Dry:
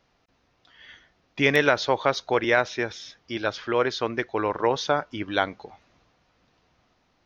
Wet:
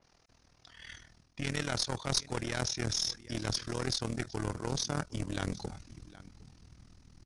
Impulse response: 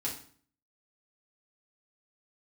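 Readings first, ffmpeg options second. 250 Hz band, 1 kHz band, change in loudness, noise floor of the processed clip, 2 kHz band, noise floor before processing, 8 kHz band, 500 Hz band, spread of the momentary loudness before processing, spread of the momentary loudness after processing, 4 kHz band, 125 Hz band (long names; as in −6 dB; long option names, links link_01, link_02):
−8.0 dB, −15.0 dB, −9.5 dB, −67 dBFS, −15.5 dB, −68 dBFS, can't be measured, −16.0 dB, 10 LU, 20 LU, −3.0 dB, +0.5 dB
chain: -filter_complex "[0:a]asubboost=boost=9.5:cutoff=200,areverse,acompressor=threshold=-29dB:ratio=8,areverse,aecho=1:1:764:0.0944,asplit=2[link_01][link_02];[link_02]acrusher=bits=3:mode=log:mix=0:aa=0.000001,volume=-8.5dB[link_03];[link_01][link_03]amix=inputs=2:normalize=0,aexciter=amount=4.5:drive=1.4:freq=4700,aeval=exprs='clip(val(0),-1,0.0224)':channel_layout=same,tremolo=f=40:d=0.857,aresample=22050,aresample=44100,adynamicequalizer=threshold=0.00316:dfrequency=3800:dqfactor=0.7:tfrequency=3800:tqfactor=0.7:attack=5:release=100:ratio=0.375:range=3:mode=boostabove:tftype=highshelf"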